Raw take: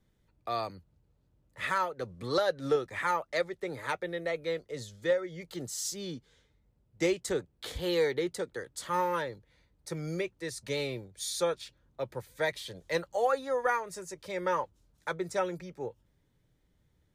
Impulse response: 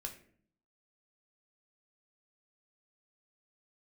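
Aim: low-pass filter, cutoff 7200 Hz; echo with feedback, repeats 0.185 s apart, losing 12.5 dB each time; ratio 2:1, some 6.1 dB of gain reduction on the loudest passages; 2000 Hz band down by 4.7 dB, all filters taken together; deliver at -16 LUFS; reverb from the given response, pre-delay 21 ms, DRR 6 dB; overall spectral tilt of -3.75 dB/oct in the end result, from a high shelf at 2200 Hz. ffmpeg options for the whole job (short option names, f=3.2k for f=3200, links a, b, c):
-filter_complex "[0:a]lowpass=7.2k,equalizer=f=2k:t=o:g=-8,highshelf=f=2.2k:g=4,acompressor=threshold=-34dB:ratio=2,aecho=1:1:185|370|555:0.237|0.0569|0.0137,asplit=2[a][b];[1:a]atrim=start_sample=2205,adelay=21[c];[b][c]afir=irnorm=-1:irlink=0,volume=-3.5dB[d];[a][d]amix=inputs=2:normalize=0,volume=20.5dB"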